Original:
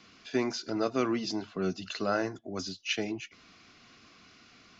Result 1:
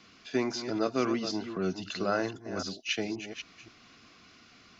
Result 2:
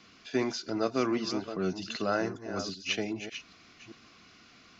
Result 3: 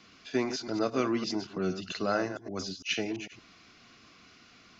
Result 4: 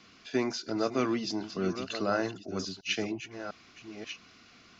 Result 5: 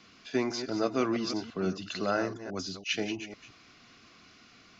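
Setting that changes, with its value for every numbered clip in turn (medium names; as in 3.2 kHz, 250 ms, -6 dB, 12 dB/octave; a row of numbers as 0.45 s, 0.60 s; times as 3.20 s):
chunks repeated in reverse, time: 263 ms, 392 ms, 113 ms, 702 ms, 167 ms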